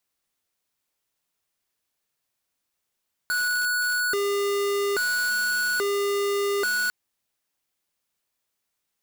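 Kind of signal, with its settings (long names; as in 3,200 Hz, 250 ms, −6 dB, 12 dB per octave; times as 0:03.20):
siren hi-lo 403–1,470 Hz 0.6 per second square −24.5 dBFS 3.60 s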